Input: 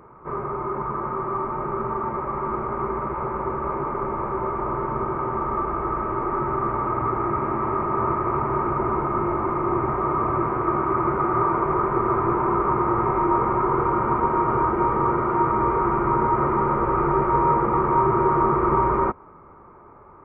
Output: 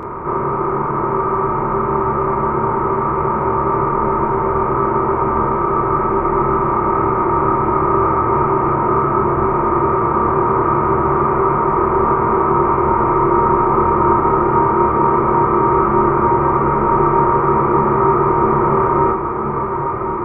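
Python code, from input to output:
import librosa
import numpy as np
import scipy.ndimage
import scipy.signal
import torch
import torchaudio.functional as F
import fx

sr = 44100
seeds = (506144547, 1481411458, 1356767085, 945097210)

p1 = fx.bin_compress(x, sr, power=0.4)
p2 = fx.doubler(p1, sr, ms=28.0, db=-2.5)
p3 = p2 + fx.echo_diffused(p2, sr, ms=951, feedback_pct=73, wet_db=-9.0, dry=0)
y = F.gain(torch.from_numpy(p3), -1.0).numpy()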